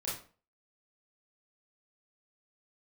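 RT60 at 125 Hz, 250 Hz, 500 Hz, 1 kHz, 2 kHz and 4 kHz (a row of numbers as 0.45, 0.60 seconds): 0.45, 0.45, 0.40, 0.40, 0.35, 0.30 seconds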